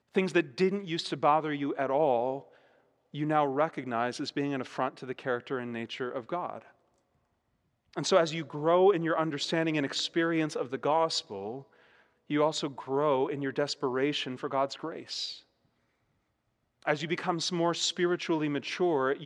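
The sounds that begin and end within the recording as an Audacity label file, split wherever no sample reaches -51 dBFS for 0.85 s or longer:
7.930000	15.420000	sound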